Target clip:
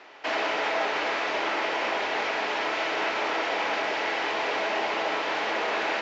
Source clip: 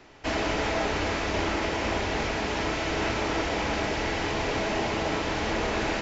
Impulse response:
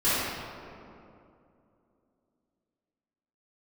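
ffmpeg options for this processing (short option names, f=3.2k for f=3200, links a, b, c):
-filter_complex "[0:a]asplit=2[a][b];[b]alimiter=level_in=1.5dB:limit=-24dB:level=0:latency=1:release=258,volume=-1.5dB,volume=0.5dB[c];[a][c]amix=inputs=2:normalize=0,asoftclip=type=hard:threshold=-16dB,highpass=550,lowpass=3.9k"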